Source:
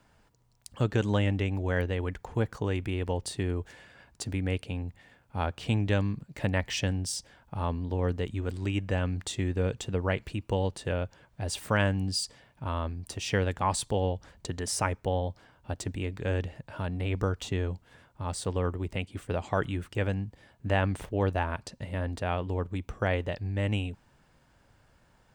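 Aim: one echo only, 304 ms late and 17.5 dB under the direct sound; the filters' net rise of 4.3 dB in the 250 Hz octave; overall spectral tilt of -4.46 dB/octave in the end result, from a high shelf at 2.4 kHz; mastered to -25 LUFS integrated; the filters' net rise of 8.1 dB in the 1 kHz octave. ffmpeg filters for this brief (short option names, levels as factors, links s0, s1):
-af "equalizer=f=250:t=o:g=5,equalizer=f=1000:t=o:g=8.5,highshelf=f=2400:g=8.5,aecho=1:1:304:0.133,volume=1.33"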